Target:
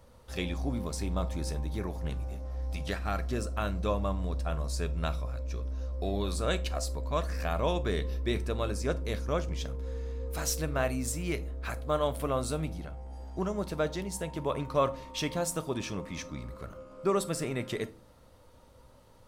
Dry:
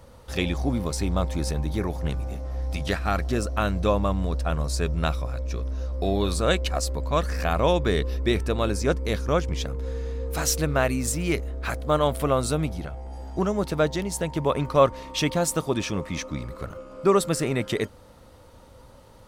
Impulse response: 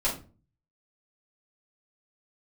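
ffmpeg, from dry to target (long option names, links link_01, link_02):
-filter_complex "[0:a]asplit=2[link_01][link_02];[1:a]atrim=start_sample=2205,highshelf=frequency=6000:gain=9[link_03];[link_02][link_03]afir=irnorm=-1:irlink=0,volume=-19dB[link_04];[link_01][link_04]amix=inputs=2:normalize=0,volume=-9dB"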